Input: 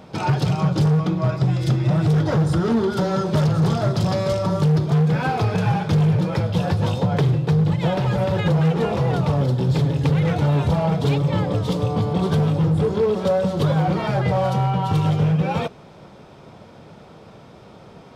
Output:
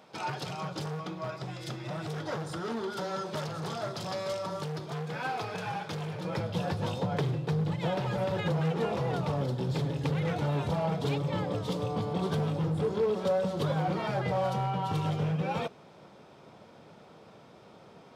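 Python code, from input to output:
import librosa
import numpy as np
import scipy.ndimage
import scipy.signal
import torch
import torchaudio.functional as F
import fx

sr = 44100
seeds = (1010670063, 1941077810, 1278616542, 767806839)

y = fx.highpass(x, sr, hz=fx.steps((0.0, 680.0), (6.25, 200.0)), slope=6)
y = y * 10.0 ** (-7.5 / 20.0)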